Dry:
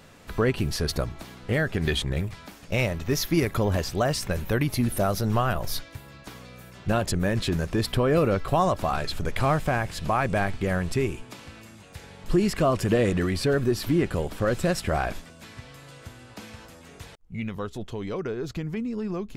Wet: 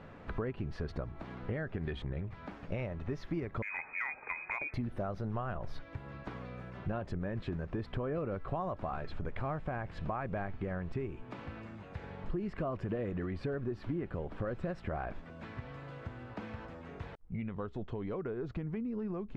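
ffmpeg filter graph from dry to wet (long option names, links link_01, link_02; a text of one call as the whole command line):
ffmpeg -i in.wav -filter_complex "[0:a]asettb=1/sr,asplit=3[link_01][link_02][link_03];[link_01]atrim=end=3.624[link_04];[link_02]atrim=start=3.62:end=4.74,asetpts=PTS-STARTPTS,afade=type=in:duration=0.004:curve=qsin,afade=type=out:start_time=1.116:duration=0.004:curve=qsin,highpass=80,lowpass=frequency=2200:width_type=q:width=0.5098,lowpass=frequency=2200:width_type=q:width=0.6013,lowpass=frequency=2200:width_type=q:width=0.9,lowpass=frequency=2200:width_type=q:width=2.563,afreqshift=-2600,asoftclip=type=hard:threshold=-16dB[link_05];[link_03]atrim=start=4.736[link_06];[link_04][link_05]acrossfade=duration=0.004:curve1=hsin:curve2=qsin[link_07];[link_07][link_06]acrossfade=duration=0.004:curve1=qsin:curve2=hsin,lowpass=1700,acompressor=threshold=-37dB:ratio=4,volume=1dB" out.wav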